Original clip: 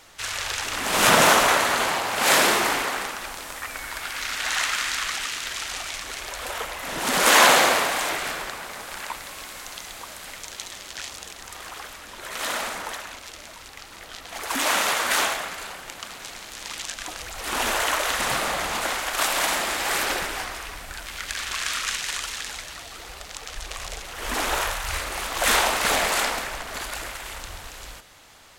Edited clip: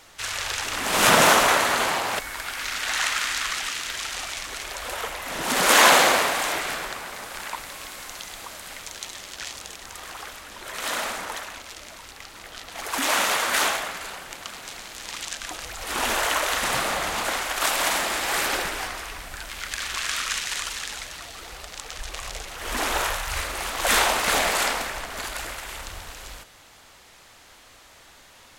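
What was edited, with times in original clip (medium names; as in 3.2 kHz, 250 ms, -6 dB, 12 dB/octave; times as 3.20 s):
2.19–3.76 s: delete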